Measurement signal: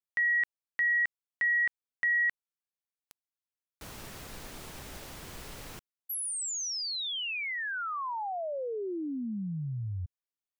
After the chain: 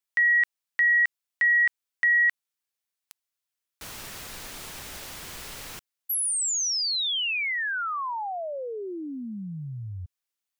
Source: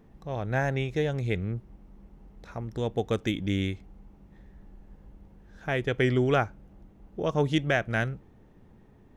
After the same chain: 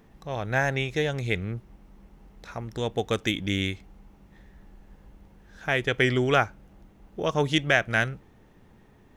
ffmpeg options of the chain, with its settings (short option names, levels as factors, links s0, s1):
-af "tiltshelf=f=910:g=-4.5,volume=1.5"